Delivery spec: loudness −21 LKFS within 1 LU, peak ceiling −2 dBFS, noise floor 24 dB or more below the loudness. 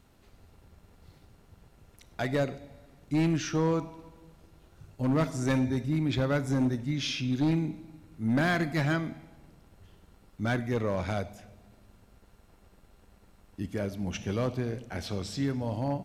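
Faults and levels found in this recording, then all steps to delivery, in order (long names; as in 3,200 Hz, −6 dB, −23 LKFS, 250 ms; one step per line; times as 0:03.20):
share of clipped samples 1.1%; peaks flattened at −21.0 dBFS; integrated loudness −30.0 LKFS; sample peak −21.0 dBFS; target loudness −21.0 LKFS
→ clipped peaks rebuilt −21 dBFS
level +9 dB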